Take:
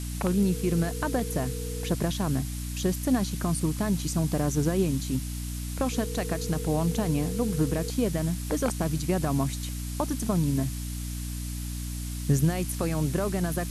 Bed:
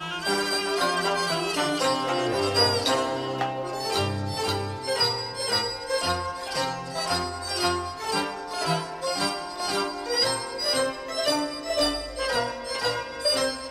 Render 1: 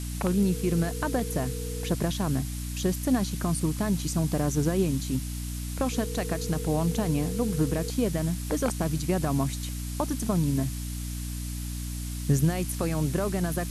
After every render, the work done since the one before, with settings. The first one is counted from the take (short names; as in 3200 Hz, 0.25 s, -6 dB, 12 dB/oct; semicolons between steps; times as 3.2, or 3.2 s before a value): nothing audible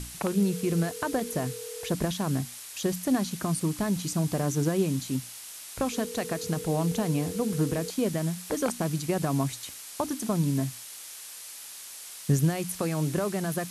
notches 60/120/180/240/300 Hz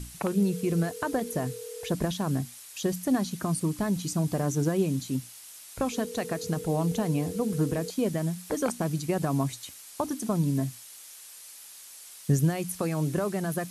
denoiser 6 dB, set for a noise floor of -43 dBFS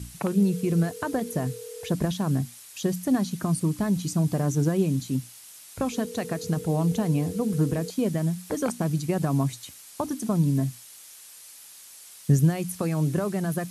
HPF 65 Hz; tone controls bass +5 dB, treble 0 dB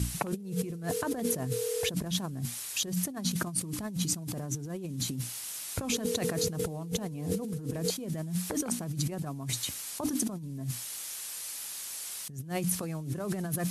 negative-ratio compressor -34 dBFS, ratio -1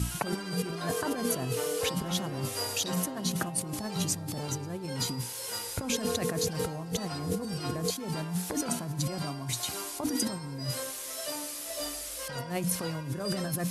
add bed -14 dB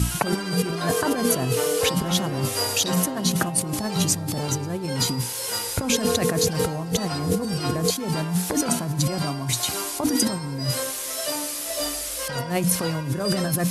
gain +8.5 dB